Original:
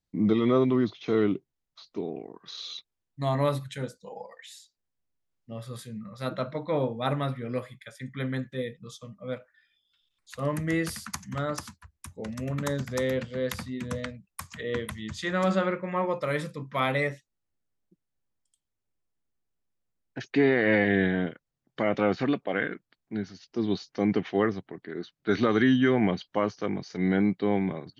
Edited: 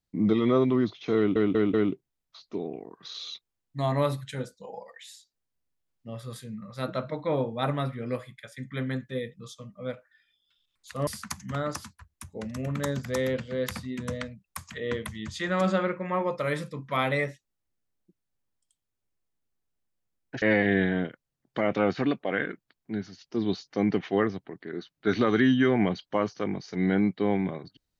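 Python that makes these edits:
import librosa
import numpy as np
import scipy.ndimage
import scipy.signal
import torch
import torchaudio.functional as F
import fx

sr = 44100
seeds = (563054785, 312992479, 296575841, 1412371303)

y = fx.edit(x, sr, fx.stutter(start_s=1.17, slice_s=0.19, count=4),
    fx.cut(start_s=10.5, length_s=0.4),
    fx.cut(start_s=20.25, length_s=0.39), tone=tone)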